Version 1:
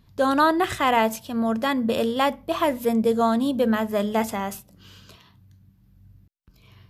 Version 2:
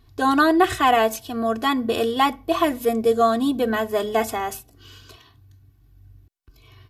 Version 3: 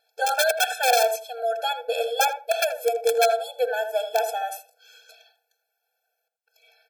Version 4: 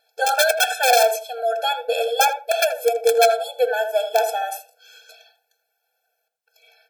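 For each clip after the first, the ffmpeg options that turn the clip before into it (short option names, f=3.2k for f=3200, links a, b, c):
-af "aecho=1:1:2.7:0.98"
-filter_complex "[0:a]aeval=exprs='(mod(2.99*val(0)+1,2)-1)/2.99':c=same,asplit=2[a][b];[b]adelay=80,lowpass=f=1k:p=1,volume=-6dB,asplit=2[c][d];[d]adelay=80,lowpass=f=1k:p=1,volume=0.21,asplit=2[e][f];[f]adelay=80,lowpass=f=1k:p=1,volume=0.21[g];[c][e][g]amix=inputs=3:normalize=0[h];[a][h]amix=inputs=2:normalize=0,afftfilt=real='re*eq(mod(floor(b*sr/1024/450),2),1)':imag='im*eq(mod(floor(b*sr/1024/450),2),1)':win_size=1024:overlap=0.75"
-af "flanger=delay=3.3:depth=6.5:regen=-74:speed=0.34:shape=triangular,volume=8.5dB"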